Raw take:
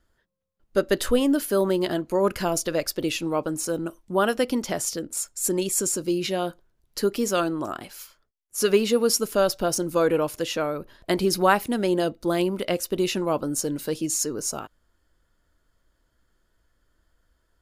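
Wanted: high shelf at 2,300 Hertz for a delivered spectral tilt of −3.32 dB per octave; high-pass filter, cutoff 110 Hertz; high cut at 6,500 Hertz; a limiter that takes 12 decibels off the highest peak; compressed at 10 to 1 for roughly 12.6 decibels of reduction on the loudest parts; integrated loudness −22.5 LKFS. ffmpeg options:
ffmpeg -i in.wav -af "highpass=110,lowpass=6500,highshelf=frequency=2300:gain=7,acompressor=threshold=-27dB:ratio=10,volume=12.5dB,alimiter=limit=-13dB:level=0:latency=1" out.wav

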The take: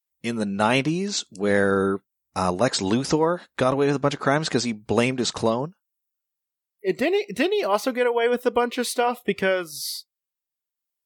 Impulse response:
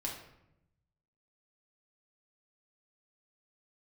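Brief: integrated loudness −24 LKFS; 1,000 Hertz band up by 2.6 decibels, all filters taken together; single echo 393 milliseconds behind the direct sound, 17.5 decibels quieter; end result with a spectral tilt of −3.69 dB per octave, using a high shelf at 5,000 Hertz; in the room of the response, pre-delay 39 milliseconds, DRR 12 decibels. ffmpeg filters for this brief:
-filter_complex "[0:a]equalizer=frequency=1000:width_type=o:gain=3,highshelf=frequency=5000:gain=8.5,aecho=1:1:393:0.133,asplit=2[link_01][link_02];[1:a]atrim=start_sample=2205,adelay=39[link_03];[link_02][link_03]afir=irnorm=-1:irlink=0,volume=-13dB[link_04];[link_01][link_04]amix=inputs=2:normalize=0,volume=-2.5dB"

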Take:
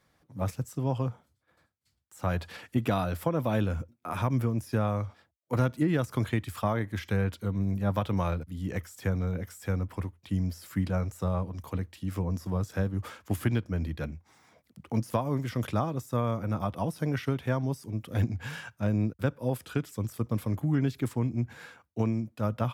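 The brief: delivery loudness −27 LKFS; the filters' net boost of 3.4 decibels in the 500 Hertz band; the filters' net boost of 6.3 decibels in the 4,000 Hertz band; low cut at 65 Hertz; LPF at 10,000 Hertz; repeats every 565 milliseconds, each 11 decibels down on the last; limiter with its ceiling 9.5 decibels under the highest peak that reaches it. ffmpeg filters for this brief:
ffmpeg -i in.wav -af "highpass=65,lowpass=10000,equalizer=frequency=500:width_type=o:gain=4,equalizer=frequency=4000:width_type=o:gain=8,alimiter=limit=-20.5dB:level=0:latency=1,aecho=1:1:565|1130|1695:0.282|0.0789|0.0221,volume=5.5dB" out.wav

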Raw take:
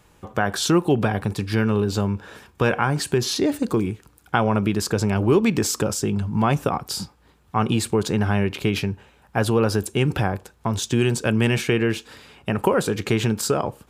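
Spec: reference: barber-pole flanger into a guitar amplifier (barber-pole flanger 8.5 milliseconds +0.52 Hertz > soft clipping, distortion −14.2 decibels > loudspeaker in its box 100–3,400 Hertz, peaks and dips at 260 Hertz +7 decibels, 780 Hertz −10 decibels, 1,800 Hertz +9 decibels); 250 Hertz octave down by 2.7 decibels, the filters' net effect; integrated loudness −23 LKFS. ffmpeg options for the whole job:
ffmpeg -i in.wav -filter_complex "[0:a]equalizer=frequency=250:width_type=o:gain=-6.5,asplit=2[link_01][link_02];[link_02]adelay=8.5,afreqshift=0.52[link_03];[link_01][link_03]amix=inputs=2:normalize=1,asoftclip=threshold=-19.5dB,highpass=100,equalizer=frequency=260:width_type=q:width=4:gain=7,equalizer=frequency=780:width_type=q:width=4:gain=-10,equalizer=frequency=1800:width_type=q:width=4:gain=9,lowpass=frequency=3400:width=0.5412,lowpass=frequency=3400:width=1.3066,volume=6.5dB" out.wav

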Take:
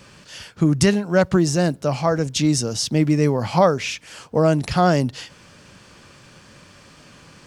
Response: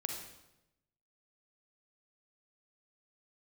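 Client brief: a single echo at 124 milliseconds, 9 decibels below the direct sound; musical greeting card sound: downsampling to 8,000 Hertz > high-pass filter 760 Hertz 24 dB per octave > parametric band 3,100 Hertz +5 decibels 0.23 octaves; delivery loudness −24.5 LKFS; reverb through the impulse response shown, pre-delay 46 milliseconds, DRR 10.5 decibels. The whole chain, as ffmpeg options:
-filter_complex "[0:a]aecho=1:1:124:0.355,asplit=2[link_01][link_02];[1:a]atrim=start_sample=2205,adelay=46[link_03];[link_02][link_03]afir=irnorm=-1:irlink=0,volume=-11.5dB[link_04];[link_01][link_04]amix=inputs=2:normalize=0,aresample=8000,aresample=44100,highpass=frequency=760:width=0.5412,highpass=frequency=760:width=1.3066,equalizer=frequency=3100:width_type=o:width=0.23:gain=5,volume=3dB"

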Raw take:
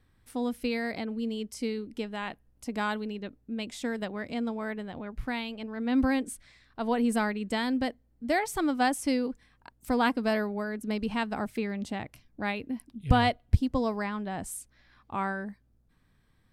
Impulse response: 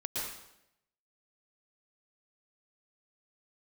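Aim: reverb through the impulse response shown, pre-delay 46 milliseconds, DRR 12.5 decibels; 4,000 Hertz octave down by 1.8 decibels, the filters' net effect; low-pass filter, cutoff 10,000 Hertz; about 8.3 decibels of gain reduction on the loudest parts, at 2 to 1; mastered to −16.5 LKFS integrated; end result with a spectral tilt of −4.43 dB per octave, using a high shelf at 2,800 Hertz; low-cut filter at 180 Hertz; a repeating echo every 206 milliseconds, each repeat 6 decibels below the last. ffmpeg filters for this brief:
-filter_complex "[0:a]highpass=180,lowpass=10000,highshelf=frequency=2800:gain=4,equalizer=frequency=4000:width_type=o:gain=-5.5,acompressor=threshold=-36dB:ratio=2,aecho=1:1:206|412|618|824|1030|1236:0.501|0.251|0.125|0.0626|0.0313|0.0157,asplit=2[link_01][link_02];[1:a]atrim=start_sample=2205,adelay=46[link_03];[link_02][link_03]afir=irnorm=-1:irlink=0,volume=-16.5dB[link_04];[link_01][link_04]amix=inputs=2:normalize=0,volume=19.5dB"

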